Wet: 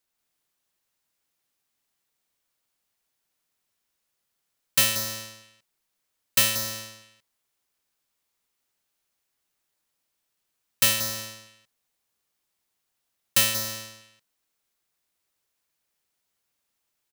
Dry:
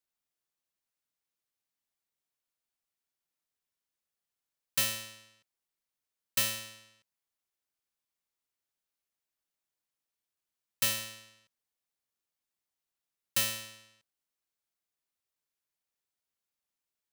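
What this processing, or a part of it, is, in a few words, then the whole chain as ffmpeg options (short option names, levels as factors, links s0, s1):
ducked delay: -filter_complex "[0:a]asplit=3[s0][s1][s2];[s1]adelay=182,volume=0.794[s3];[s2]apad=whole_len=763261[s4];[s3][s4]sidechaincompress=threshold=0.00891:ratio=4:attack=16:release=297[s5];[s0][s5]amix=inputs=2:normalize=0,volume=2.66"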